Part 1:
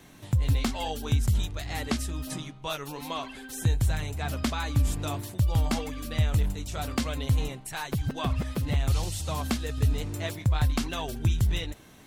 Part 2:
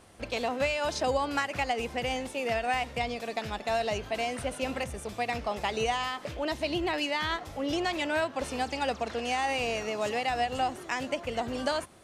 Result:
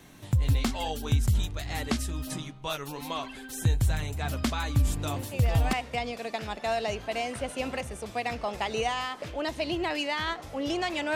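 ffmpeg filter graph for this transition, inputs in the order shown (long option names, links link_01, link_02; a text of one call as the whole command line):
ffmpeg -i cue0.wav -i cue1.wav -filter_complex "[1:a]asplit=2[link_01][link_02];[0:a]apad=whole_dur=11.15,atrim=end=11.15,atrim=end=5.732[link_03];[link_02]atrim=start=2.758:end=8.18[link_04];[link_01]atrim=start=2.19:end=2.76,asetpts=PTS-STARTPTS,volume=-6dB,afade=type=in:duration=0.004:curve=hsin,afade=type=out:start_time=0.566:duration=0.004:curve=hsin,adelay=5160[link_05];[link_03][link_04]acrossfade=duration=0.004:curve1=hsin:curve2=hsin[link_06];[link_06][link_05]amix=inputs=2:normalize=0" out.wav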